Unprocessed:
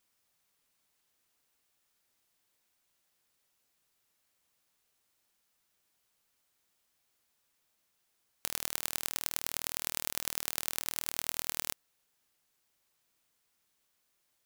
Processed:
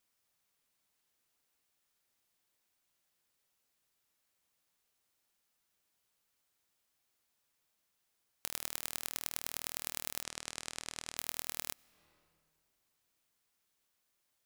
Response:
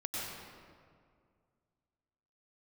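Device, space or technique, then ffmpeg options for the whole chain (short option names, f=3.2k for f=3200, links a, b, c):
compressed reverb return: -filter_complex "[0:a]asplit=2[a][b];[1:a]atrim=start_sample=2205[c];[b][c]afir=irnorm=-1:irlink=0,acompressor=threshold=-45dB:ratio=10,volume=-15.5dB[d];[a][d]amix=inputs=2:normalize=0,asettb=1/sr,asplit=3[e][f][g];[e]atrim=end=10.234[h];[f]atrim=start=10.23:end=11.17,asetpts=PTS-STARTPTS,afade=t=in:d=0.004:c=qsin,afade=t=out:st=0.936:d=0.004:c=qsin,lowpass=f=8.9k:w=0.5412,lowpass=f=8.9k:w=1.3066[i];[g]atrim=start=11.166[j];[h][i]acrossfade=d=0.004:c1=hsin:c2=qsin[k];[k][j]acrossfade=d=0.004:c1=qsin:c2=hsin,volume=-4.5dB"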